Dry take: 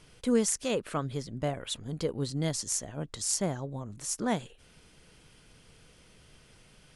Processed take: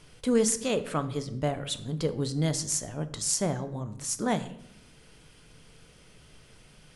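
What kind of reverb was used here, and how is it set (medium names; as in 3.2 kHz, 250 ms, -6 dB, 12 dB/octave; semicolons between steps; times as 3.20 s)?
simulated room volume 200 m³, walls mixed, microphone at 0.31 m; trim +2 dB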